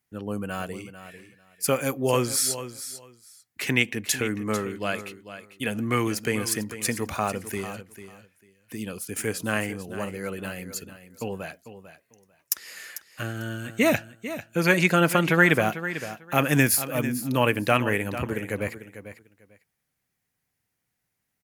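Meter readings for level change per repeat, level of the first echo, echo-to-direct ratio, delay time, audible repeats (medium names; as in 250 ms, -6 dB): -15.0 dB, -12.5 dB, -12.5 dB, 446 ms, 2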